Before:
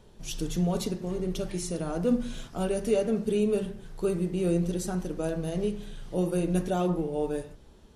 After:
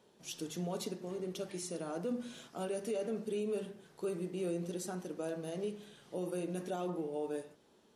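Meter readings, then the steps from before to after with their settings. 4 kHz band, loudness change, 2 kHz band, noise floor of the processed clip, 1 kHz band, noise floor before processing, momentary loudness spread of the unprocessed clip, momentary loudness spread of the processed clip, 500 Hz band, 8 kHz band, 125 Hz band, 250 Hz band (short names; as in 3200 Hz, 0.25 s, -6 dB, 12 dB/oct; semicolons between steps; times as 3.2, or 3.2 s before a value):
-7.0 dB, -10.0 dB, -7.5 dB, -67 dBFS, -8.0 dB, -53 dBFS, 8 LU, 6 LU, -8.5 dB, -7.0 dB, -14.0 dB, -11.5 dB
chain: HPF 240 Hz 12 dB/oct; limiter -22 dBFS, peak gain reduction 7 dB; gain -6.5 dB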